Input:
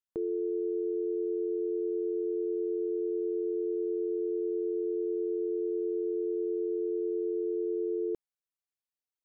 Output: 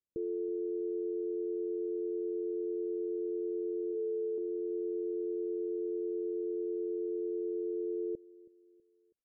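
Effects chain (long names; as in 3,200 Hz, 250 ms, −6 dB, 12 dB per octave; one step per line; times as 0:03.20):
Butterworth low-pass 570 Hz 72 dB per octave
0:03.91–0:04.38: mains-hum notches 50/100/150/200/250/300/350/400/450 Hz
brickwall limiter −34.5 dBFS, peak gain reduction 9 dB
repeating echo 324 ms, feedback 43%, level −21 dB
level +5 dB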